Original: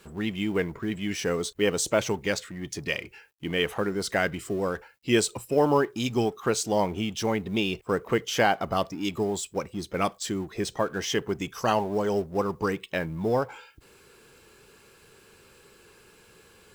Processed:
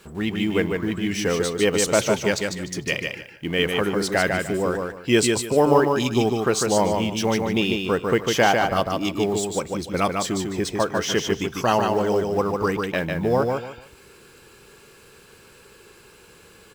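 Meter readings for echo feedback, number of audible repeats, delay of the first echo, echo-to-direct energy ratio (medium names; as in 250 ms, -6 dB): 25%, 3, 149 ms, -3.5 dB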